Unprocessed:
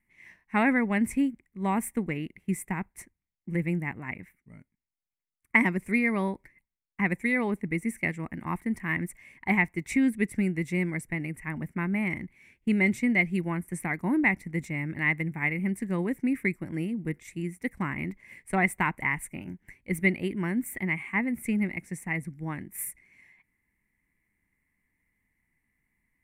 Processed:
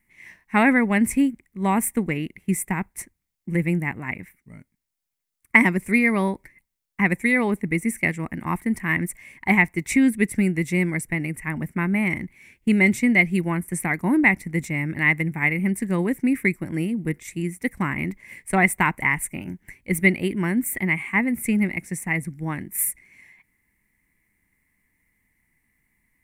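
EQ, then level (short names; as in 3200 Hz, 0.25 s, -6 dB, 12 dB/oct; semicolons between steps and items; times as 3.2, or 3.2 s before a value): high shelf 5300 Hz +6.5 dB; +6.0 dB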